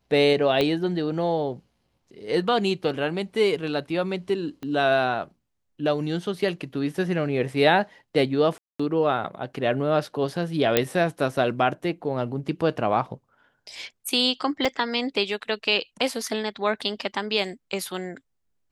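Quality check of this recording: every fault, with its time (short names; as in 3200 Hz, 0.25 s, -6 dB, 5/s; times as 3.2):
0.61 pop -11 dBFS
4.63 pop -23 dBFS
8.58–8.79 gap 0.215 s
10.77 pop -3 dBFS
14.65 gap 2.2 ms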